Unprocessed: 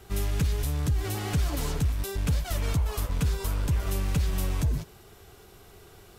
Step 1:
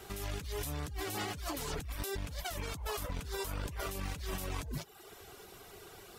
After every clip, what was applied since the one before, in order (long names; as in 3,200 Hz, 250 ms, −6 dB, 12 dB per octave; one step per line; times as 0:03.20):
reverb reduction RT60 0.63 s
low-shelf EQ 180 Hz −11 dB
compressor whose output falls as the input rises −39 dBFS, ratio −1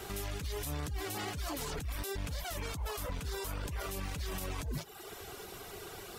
brickwall limiter −35.5 dBFS, peak gain reduction 10 dB
level +6 dB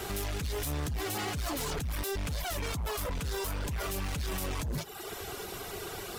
hard clipping −37 dBFS, distortion −12 dB
level +6.5 dB